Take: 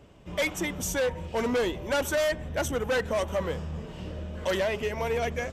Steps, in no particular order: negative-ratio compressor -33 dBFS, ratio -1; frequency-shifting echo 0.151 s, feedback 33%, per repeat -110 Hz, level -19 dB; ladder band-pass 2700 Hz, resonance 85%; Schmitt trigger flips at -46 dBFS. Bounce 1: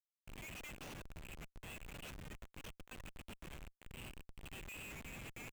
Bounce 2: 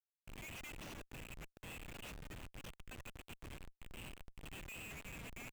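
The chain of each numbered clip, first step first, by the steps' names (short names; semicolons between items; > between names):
negative-ratio compressor > ladder band-pass > frequency-shifting echo > Schmitt trigger; frequency-shifting echo > negative-ratio compressor > ladder band-pass > Schmitt trigger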